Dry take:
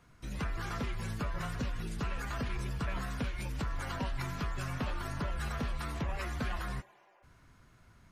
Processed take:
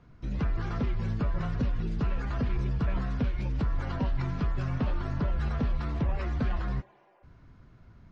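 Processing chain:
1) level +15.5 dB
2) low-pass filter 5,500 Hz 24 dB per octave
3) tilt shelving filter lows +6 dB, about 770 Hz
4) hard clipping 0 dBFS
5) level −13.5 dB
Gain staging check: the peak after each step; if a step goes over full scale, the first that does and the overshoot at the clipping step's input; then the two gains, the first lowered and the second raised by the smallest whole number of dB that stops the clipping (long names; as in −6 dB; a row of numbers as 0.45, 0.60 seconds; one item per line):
−10.0, −10.0, −5.0, −5.0, −18.5 dBFS
no step passes full scale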